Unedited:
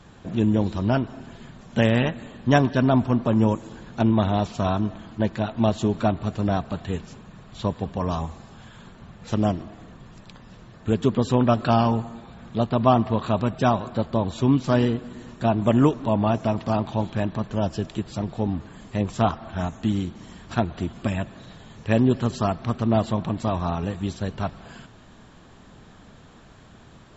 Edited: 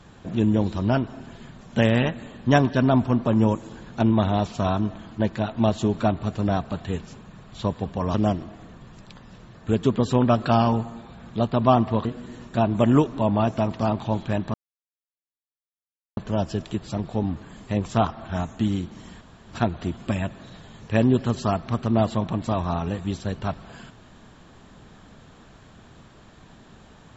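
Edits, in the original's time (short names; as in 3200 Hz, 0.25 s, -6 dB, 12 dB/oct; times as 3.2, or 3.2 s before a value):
8.14–9.33 cut
13.24–14.92 cut
17.41 insert silence 1.63 s
20.45 insert room tone 0.28 s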